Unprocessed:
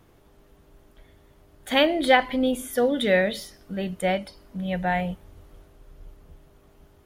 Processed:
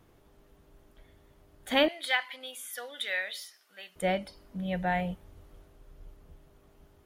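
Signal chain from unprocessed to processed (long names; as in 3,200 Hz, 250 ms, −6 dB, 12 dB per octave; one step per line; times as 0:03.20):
0:01.88–0:03.96: high-pass filter 1,400 Hz 12 dB per octave
level −4.5 dB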